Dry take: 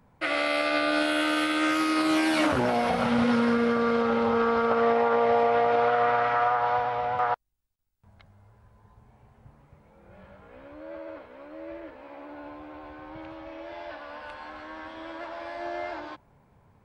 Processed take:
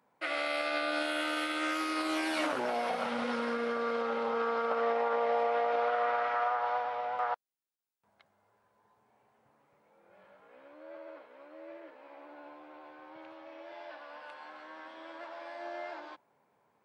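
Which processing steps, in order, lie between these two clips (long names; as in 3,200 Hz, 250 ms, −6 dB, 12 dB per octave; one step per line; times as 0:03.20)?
high-pass filter 350 Hz 12 dB per octave
level −6.5 dB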